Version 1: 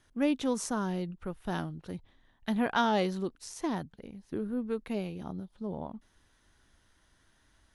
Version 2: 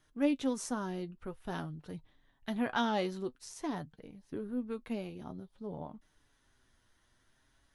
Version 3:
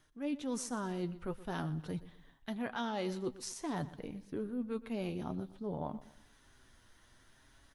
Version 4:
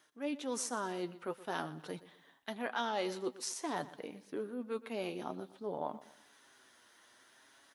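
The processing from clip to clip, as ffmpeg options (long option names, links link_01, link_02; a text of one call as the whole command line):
ffmpeg -i in.wav -af "flanger=delay=6.4:depth=2.2:regen=50:speed=0.5:shape=triangular" out.wav
ffmpeg -i in.wav -af "areverse,acompressor=threshold=-41dB:ratio=10,areverse,aecho=1:1:121|242|363:0.141|0.0537|0.0204,volume=7dB" out.wav
ffmpeg -i in.wav -af "highpass=370,volume=3.5dB" out.wav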